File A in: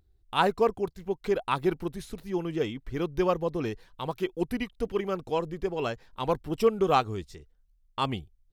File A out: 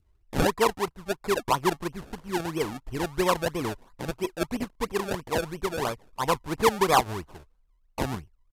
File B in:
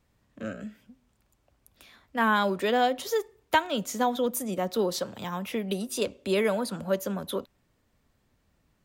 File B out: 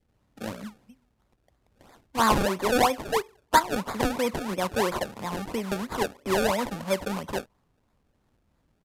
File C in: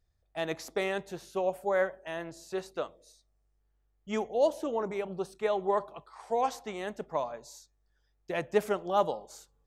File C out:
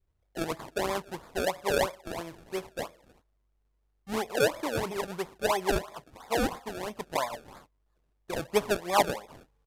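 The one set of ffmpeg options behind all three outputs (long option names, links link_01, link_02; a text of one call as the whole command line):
ffmpeg -i in.wav -af "acrusher=samples=30:mix=1:aa=0.000001:lfo=1:lforange=30:lforate=3,adynamicequalizer=threshold=0.00501:dfrequency=1000:dqfactor=2.8:tfrequency=1000:tqfactor=2.8:attack=5:release=100:ratio=0.375:range=4:mode=boostabove:tftype=bell,aresample=32000,aresample=44100" out.wav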